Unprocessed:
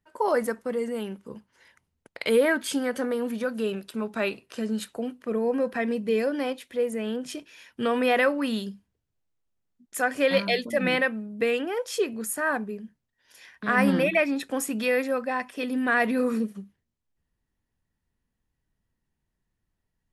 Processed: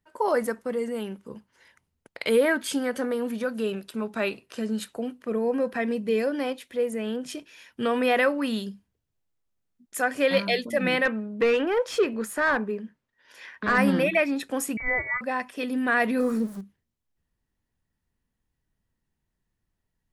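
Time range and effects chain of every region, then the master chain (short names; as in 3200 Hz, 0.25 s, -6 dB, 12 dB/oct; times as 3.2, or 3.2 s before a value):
11.05–13.78 bell 730 Hz -7 dB 0.26 oct + overdrive pedal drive 18 dB, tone 1200 Hz, clips at -11 dBFS
14.77–15.21 low shelf 360 Hz -8 dB + inverted band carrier 2500 Hz
16.2–16.61 zero-crossing step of -39 dBFS + bell 2700 Hz -8.5 dB 0.95 oct
whole clip: dry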